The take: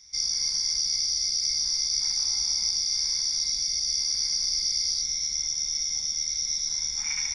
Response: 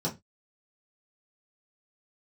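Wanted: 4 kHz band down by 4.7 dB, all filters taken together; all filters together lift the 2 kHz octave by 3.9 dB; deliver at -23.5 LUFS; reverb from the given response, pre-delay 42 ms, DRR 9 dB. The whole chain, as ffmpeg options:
-filter_complex "[0:a]equalizer=f=2000:t=o:g=6.5,equalizer=f=4000:t=o:g=-8.5,asplit=2[s0][s1];[1:a]atrim=start_sample=2205,adelay=42[s2];[s1][s2]afir=irnorm=-1:irlink=0,volume=0.168[s3];[s0][s3]amix=inputs=2:normalize=0,volume=1.58"

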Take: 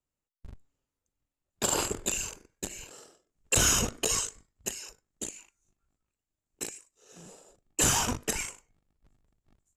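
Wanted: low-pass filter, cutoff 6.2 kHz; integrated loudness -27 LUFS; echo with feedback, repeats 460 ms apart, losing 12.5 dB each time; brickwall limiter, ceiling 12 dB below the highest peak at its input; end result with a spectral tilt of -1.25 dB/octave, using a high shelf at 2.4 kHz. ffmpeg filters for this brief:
-af "lowpass=6200,highshelf=f=2400:g=7.5,alimiter=limit=0.075:level=0:latency=1,aecho=1:1:460|920|1380:0.237|0.0569|0.0137,volume=2.37"

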